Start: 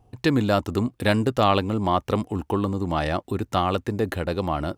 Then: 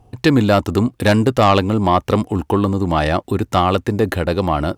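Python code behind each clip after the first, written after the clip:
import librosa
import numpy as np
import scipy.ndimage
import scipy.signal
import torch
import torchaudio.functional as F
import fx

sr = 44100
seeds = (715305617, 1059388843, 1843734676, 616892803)

y = fx.fold_sine(x, sr, drive_db=4, ceiling_db=-4.0)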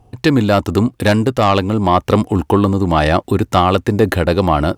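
y = fx.rider(x, sr, range_db=10, speed_s=0.5)
y = F.gain(torch.from_numpy(y), 2.0).numpy()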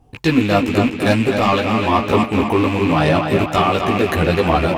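y = fx.rattle_buzz(x, sr, strikes_db=-22.0, level_db=-12.0)
y = fx.chorus_voices(y, sr, voices=6, hz=0.43, base_ms=16, depth_ms=4.0, mix_pct=50)
y = fx.echo_tape(y, sr, ms=253, feedback_pct=58, wet_db=-5.0, lp_hz=5500.0, drive_db=1.0, wow_cents=34)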